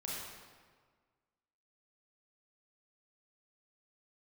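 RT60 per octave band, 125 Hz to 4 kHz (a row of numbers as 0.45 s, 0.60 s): 1.7 s, 1.7 s, 1.6 s, 1.6 s, 1.4 s, 1.1 s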